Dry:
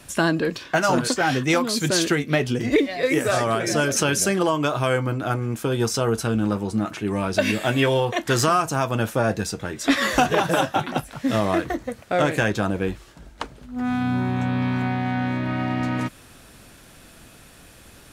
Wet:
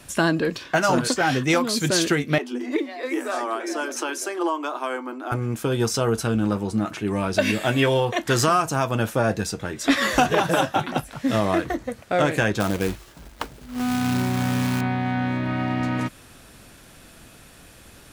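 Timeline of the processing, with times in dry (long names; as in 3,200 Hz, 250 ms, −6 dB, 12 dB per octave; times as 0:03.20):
0:02.38–0:05.32: Chebyshev high-pass with heavy ripple 240 Hz, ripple 9 dB
0:12.60–0:14.81: log-companded quantiser 4 bits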